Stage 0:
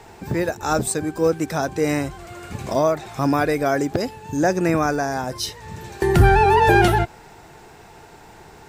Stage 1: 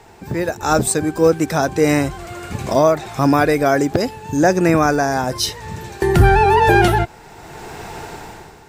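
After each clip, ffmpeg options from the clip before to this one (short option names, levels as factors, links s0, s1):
-af "dynaudnorm=f=150:g=7:m=5.31,volume=0.891"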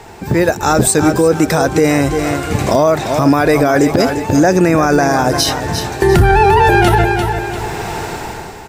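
-af "aecho=1:1:346|692|1038|1384:0.251|0.108|0.0464|0.02,alimiter=level_in=3.16:limit=0.891:release=50:level=0:latency=1,volume=0.891"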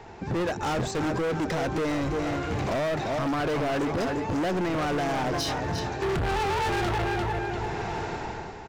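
-af "aemphasis=mode=reproduction:type=50kf,aresample=16000,aresample=44100,asoftclip=type=hard:threshold=0.15,volume=0.376"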